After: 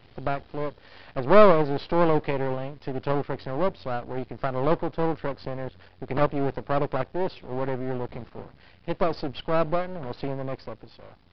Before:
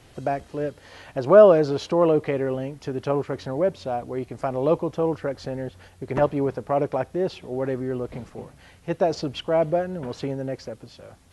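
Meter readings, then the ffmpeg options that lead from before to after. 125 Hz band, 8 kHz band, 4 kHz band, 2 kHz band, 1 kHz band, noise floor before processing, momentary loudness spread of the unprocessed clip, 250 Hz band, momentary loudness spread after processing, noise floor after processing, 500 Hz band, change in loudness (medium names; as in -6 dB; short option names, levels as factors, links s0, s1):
-1.0 dB, no reading, -2.0 dB, +2.0 dB, +1.0 dB, -52 dBFS, 14 LU, -2.0 dB, 14 LU, -54 dBFS, -4.0 dB, -3.0 dB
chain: -af "aeval=exprs='max(val(0),0)':c=same,aresample=11025,aresample=44100,volume=1.12"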